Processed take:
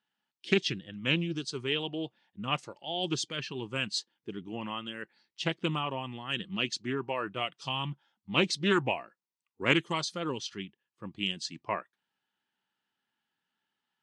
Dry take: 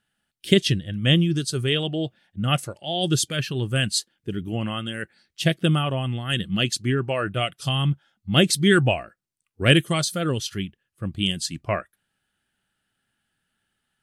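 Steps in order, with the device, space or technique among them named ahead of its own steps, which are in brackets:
full-range speaker at full volume (highs frequency-modulated by the lows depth 0.23 ms; loudspeaker in its box 230–6,300 Hz, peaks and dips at 620 Hz −5 dB, 940 Hz +10 dB, 1,500 Hz −4 dB)
level −7 dB

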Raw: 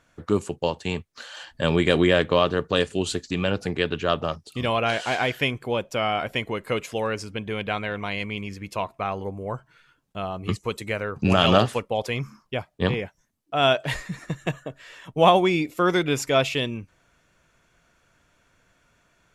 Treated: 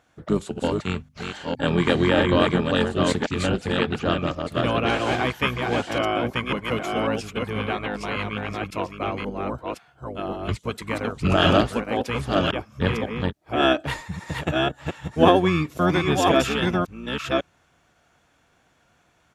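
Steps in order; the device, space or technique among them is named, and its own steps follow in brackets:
delay that plays each chunk backwards 544 ms, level −3 dB
0:00.79–0:01.76: mains-hum notches 50/100/150/200/250 Hz
octave pedal (pitch-shifted copies added −12 semitones −2 dB)
high-pass filter 64 Hz
level −2 dB

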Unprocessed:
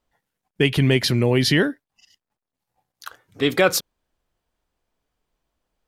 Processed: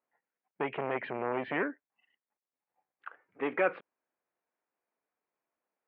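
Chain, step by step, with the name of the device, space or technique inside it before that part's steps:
public-address speaker with an overloaded transformer (saturating transformer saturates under 920 Hz; band-pass filter 230–6,500 Hz)
Butterworth low-pass 2,500 Hz 48 dB per octave
low-shelf EQ 200 Hz −11 dB
level −7 dB

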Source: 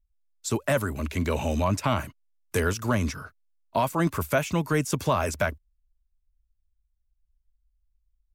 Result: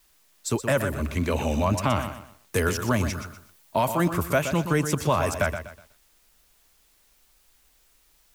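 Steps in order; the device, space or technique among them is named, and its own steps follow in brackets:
plain cassette with noise reduction switched in (one half of a high-frequency compander decoder only; tape wow and flutter; white noise bed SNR 35 dB)
0:02.56–0:04.05: high-shelf EQ 9,000 Hz +5.5 dB
feedback echo at a low word length 123 ms, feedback 35%, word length 9 bits, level −9 dB
level +1 dB

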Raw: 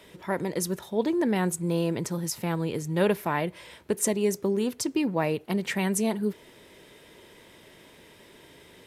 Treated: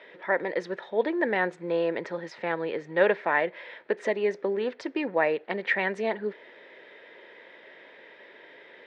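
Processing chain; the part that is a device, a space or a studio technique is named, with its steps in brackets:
phone earpiece (loudspeaker in its box 460–3,300 Hz, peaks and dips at 530 Hz +5 dB, 1,100 Hz −4 dB, 1,800 Hz +8 dB, 2,900 Hz −5 dB)
level +3 dB

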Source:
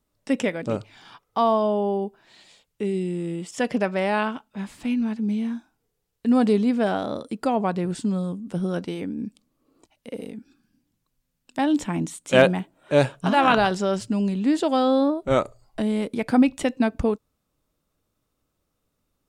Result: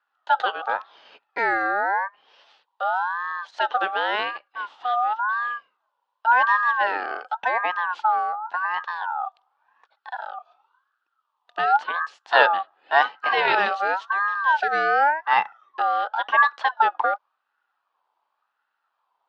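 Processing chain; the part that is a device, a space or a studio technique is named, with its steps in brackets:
voice changer toy (ring modulator whose carrier an LFO sweeps 1,200 Hz, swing 20%, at 0.91 Hz; loudspeaker in its box 540–3,900 Hz, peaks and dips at 840 Hz +7 dB, 2,200 Hz −8 dB, 3,100 Hz +3 dB)
level +2.5 dB

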